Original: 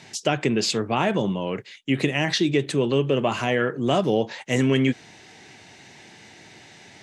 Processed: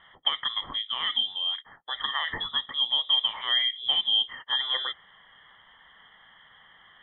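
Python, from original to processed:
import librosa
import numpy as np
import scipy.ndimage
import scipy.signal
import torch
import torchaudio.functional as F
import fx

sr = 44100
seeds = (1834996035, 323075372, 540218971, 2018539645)

y = fx.vowel_filter(x, sr, vowel='e')
y = fx.freq_invert(y, sr, carrier_hz=3700)
y = fx.air_absorb(y, sr, metres=78.0)
y = y * 10.0 ** (6.5 / 20.0)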